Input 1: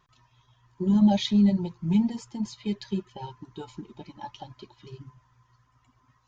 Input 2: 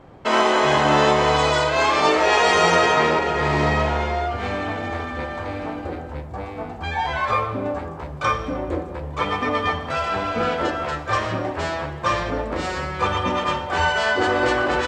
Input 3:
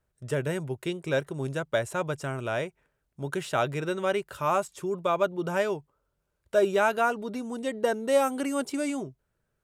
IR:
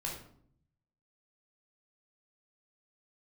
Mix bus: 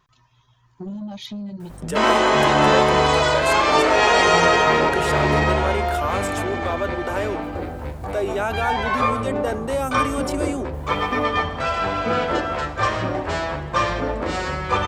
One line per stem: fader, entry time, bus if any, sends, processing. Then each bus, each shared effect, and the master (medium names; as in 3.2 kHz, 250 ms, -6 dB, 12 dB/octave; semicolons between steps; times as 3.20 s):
+2.5 dB, 0.00 s, no send, compression 16:1, threshold -28 dBFS, peak gain reduction 14 dB; saturation -29.5 dBFS, distortion -15 dB
+1.0 dB, 1.70 s, no send, hum 50 Hz, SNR 19 dB
-3.0 dB, 1.60 s, no send, steep high-pass 210 Hz 72 dB/octave; level flattener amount 50%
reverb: none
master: none